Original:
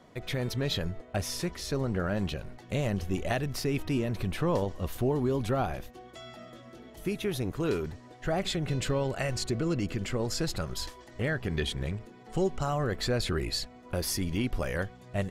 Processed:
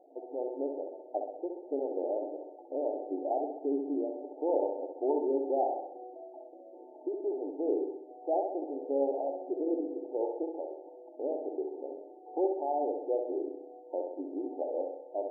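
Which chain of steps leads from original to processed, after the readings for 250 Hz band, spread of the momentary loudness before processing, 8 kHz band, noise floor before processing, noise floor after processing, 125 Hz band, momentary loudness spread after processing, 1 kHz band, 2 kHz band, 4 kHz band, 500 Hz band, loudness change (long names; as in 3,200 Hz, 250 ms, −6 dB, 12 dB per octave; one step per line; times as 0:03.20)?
−4.0 dB, 9 LU, below −40 dB, −52 dBFS, −52 dBFS, below −40 dB, 12 LU, +1.0 dB, below −40 dB, below −40 dB, +1.5 dB, −2.5 dB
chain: low-shelf EQ 390 Hz −8 dB
flutter between parallel walls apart 11.1 metres, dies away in 0.75 s
brick-wall band-pass 260–910 Hz
level +3 dB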